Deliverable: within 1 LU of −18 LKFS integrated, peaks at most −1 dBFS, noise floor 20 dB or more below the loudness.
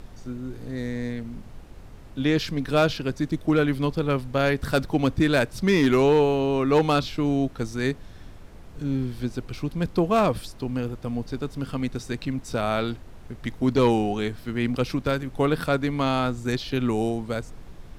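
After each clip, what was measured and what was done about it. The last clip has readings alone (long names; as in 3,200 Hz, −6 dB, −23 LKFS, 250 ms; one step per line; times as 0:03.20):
share of clipped samples 0.2%; peaks flattened at −12.5 dBFS; background noise floor −44 dBFS; target noise floor −45 dBFS; integrated loudness −25.0 LKFS; sample peak −12.5 dBFS; target loudness −18.0 LKFS
→ clipped peaks rebuilt −12.5 dBFS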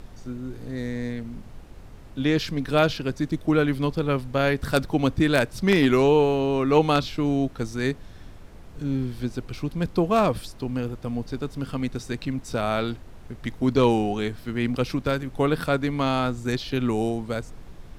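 share of clipped samples 0.0%; background noise floor −44 dBFS; target noise floor −45 dBFS
→ noise reduction from a noise print 6 dB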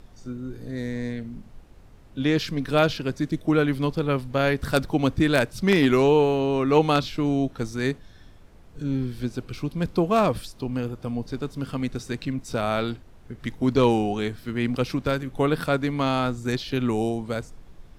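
background noise floor −49 dBFS; integrated loudness −24.5 LKFS; sample peak −3.5 dBFS; target loudness −18.0 LKFS
→ level +6.5 dB
brickwall limiter −1 dBFS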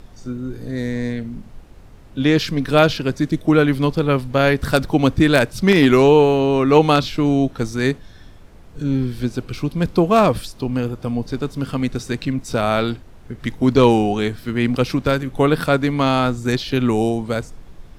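integrated loudness −18.0 LKFS; sample peak −1.0 dBFS; background noise floor −43 dBFS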